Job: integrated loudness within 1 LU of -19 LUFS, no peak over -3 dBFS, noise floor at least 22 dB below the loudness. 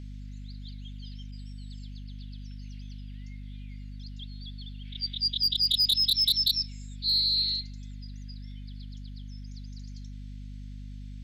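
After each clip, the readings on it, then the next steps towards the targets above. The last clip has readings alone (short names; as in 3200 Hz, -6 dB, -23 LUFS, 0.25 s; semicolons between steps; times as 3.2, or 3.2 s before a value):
clipped 0.2%; flat tops at -19.0 dBFS; hum 50 Hz; harmonics up to 250 Hz; hum level -38 dBFS; loudness -24.0 LUFS; peak -19.0 dBFS; loudness target -19.0 LUFS
-> clip repair -19 dBFS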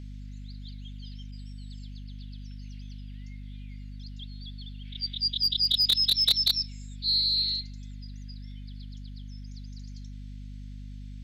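clipped 0.0%; hum 50 Hz; harmonics up to 250 Hz; hum level -38 dBFS
-> notches 50/100/150/200/250 Hz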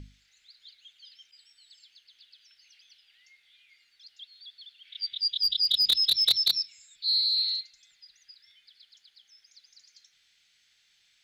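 hum none; loudness -23.5 LUFS; peak -10.0 dBFS; loudness target -19.0 LUFS
-> gain +4.5 dB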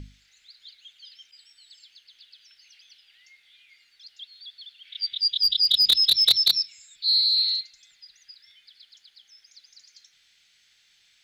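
loudness -19.0 LUFS; peak -5.5 dBFS; noise floor -63 dBFS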